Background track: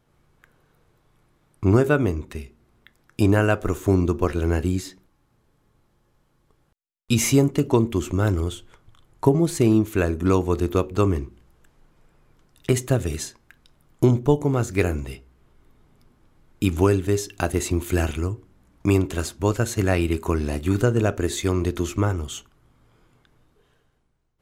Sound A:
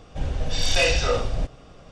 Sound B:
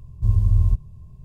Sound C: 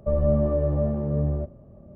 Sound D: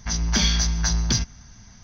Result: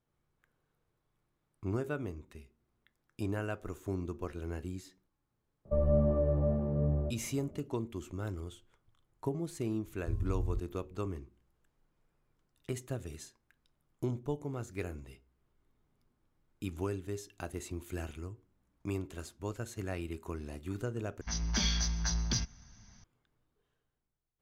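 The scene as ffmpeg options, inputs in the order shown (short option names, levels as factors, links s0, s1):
-filter_complex "[0:a]volume=0.133,asplit=2[s0][s1];[s0]atrim=end=21.214[s2];[4:a]atrim=end=1.83,asetpts=PTS-STARTPTS,volume=0.299[s3];[s1]atrim=start=23.036[s4];[3:a]atrim=end=1.95,asetpts=PTS-STARTPTS,volume=0.501,afade=t=in:d=0.004:c=hsin,afade=t=out:st=1.946:d=0.004:c=hsin,adelay=249165S[s5];[2:a]atrim=end=1.24,asetpts=PTS-STARTPTS,volume=0.141,afade=t=in:d=0.004:c=hsin,afade=t=out:st=1.236:d=0.004:c=hsin,adelay=9840[s6];[s2][s3]acrossfade=d=0.004:c1=hsin:c2=hsin[s7];[s7][s4]acrossfade=d=0.004:c1=hsin:c2=hsin[s8];[s8][s5][s6]amix=inputs=3:normalize=0"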